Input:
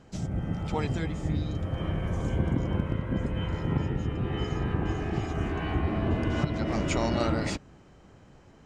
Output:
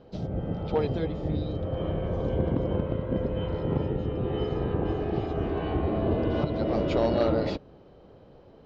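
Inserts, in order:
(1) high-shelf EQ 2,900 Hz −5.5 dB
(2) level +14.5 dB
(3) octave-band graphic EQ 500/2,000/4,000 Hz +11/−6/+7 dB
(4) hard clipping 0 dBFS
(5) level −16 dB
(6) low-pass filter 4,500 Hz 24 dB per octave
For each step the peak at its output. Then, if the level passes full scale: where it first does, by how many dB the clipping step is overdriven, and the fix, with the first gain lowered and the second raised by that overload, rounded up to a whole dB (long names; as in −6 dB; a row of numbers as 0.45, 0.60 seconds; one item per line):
−12.5, +2.0, +7.5, 0.0, −16.0, −15.5 dBFS
step 2, 7.5 dB
step 2 +6.5 dB, step 5 −8 dB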